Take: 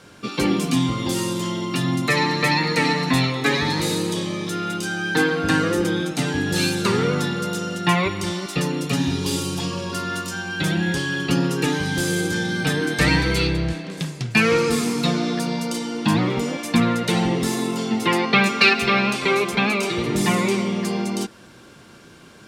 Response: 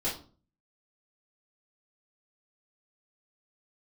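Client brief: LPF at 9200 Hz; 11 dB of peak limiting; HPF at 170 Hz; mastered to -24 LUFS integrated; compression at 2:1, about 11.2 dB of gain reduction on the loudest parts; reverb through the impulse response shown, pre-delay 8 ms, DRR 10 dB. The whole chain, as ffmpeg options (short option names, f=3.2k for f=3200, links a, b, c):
-filter_complex "[0:a]highpass=170,lowpass=9.2k,acompressor=threshold=-33dB:ratio=2,alimiter=level_in=0.5dB:limit=-24dB:level=0:latency=1,volume=-0.5dB,asplit=2[a][b];[1:a]atrim=start_sample=2205,adelay=8[c];[b][c]afir=irnorm=-1:irlink=0,volume=-16.5dB[d];[a][d]amix=inputs=2:normalize=0,volume=8.5dB"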